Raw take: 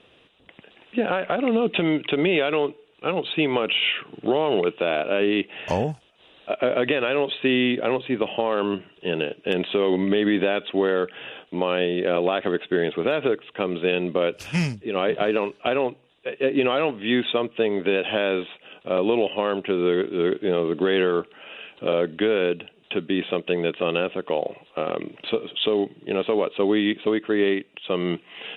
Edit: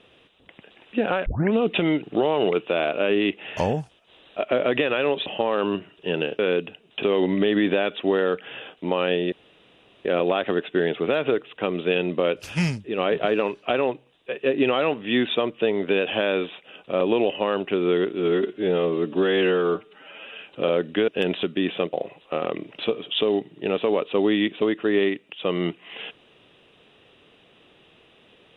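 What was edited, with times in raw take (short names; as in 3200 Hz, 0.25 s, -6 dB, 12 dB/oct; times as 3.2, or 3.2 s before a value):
1.26 tape start 0.27 s
2.03–4.14 cut
7.37–8.25 cut
9.38–9.73 swap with 22.32–22.96
12.02 insert room tone 0.73 s
20.16–21.62 stretch 1.5×
23.46–24.38 cut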